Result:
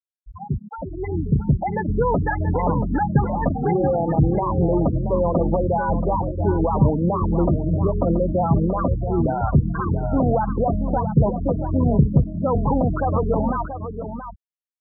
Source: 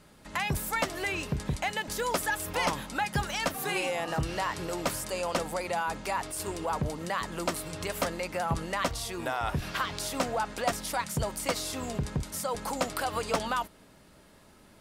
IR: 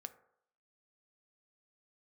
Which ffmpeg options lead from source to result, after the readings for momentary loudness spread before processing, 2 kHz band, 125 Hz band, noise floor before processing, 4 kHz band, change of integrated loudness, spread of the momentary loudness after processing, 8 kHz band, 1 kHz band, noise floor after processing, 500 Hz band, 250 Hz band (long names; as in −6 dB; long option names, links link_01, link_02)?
4 LU, −4.0 dB, +17.0 dB, −57 dBFS, below −40 dB, +10.5 dB, 8 LU, below −40 dB, +7.0 dB, −49 dBFS, +11.0 dB, +16.0 dB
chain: -filter_complex "[0:a]acrossover=split=130[link_01][link_02];[link_01]acompressor=threshold=-46dB:ratio=6[link_03];[link_02]lowpass=1400[link_04];[link_03][link_04]amix=inputs=2:normalize=0,alimiter=level_in=1.5dB:limit=-24dB:level=0:latency=1:release=44,volume=-1.5dB,dynaudnorm=framelen=150:gausssize=17:maxgain=9dB,highpass=49,aemphasis=mode=reproduction:type=riaa,afftfilt=real='re*gte(hypot(re,im),0.158)':imag='im*gte(hypot(re,im),0.158)':win_size=1024:overlap=0.75,aecho=1:1:680:0.335,volume=2.5dB"